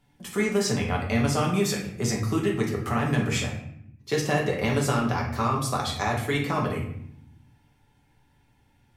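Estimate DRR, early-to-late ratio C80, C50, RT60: -2.5 dB, 9.0 dB, 5.5 dB, 0.75 s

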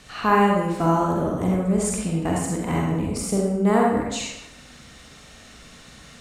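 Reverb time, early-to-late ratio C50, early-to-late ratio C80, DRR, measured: 0.90 s, -0.5 dB, 3.5 dB, -2.5 dB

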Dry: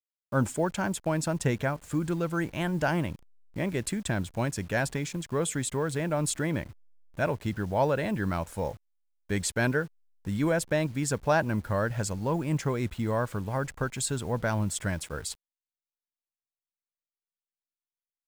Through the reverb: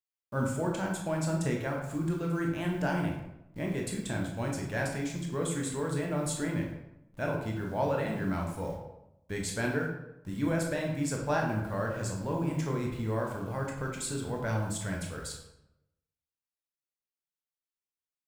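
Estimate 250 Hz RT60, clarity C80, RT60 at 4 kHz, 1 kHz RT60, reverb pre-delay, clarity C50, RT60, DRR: 0.95 s, 7.0 dB, 0.60 s, 0.85 s, 14 ms, 4.5 dB, 0.85 s, -0.5 dB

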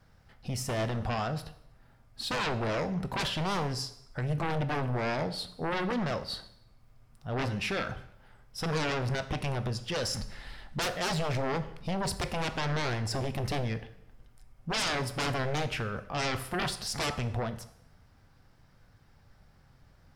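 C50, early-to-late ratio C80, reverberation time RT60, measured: 14.5 dB, 16.5 dB, 0.75 s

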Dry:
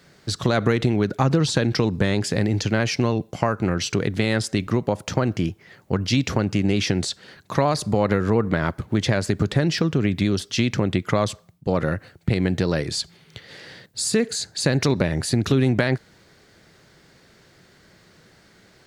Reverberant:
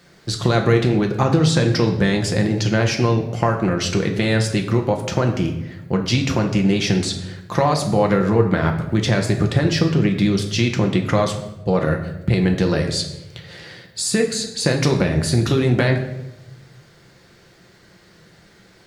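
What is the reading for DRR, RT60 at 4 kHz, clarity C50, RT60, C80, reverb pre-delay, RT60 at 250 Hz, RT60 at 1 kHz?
2.5 dB, 0.65 s, 8.5 dB, 0.95 s, 11.0 dB, 6 ms, 1.2 s, 0.80 s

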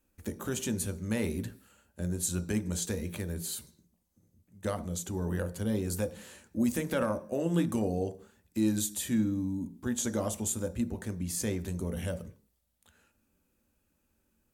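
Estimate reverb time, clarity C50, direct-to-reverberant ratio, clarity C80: 0.45 s, 16.0 dB, 8.0 dB, 20.5 dB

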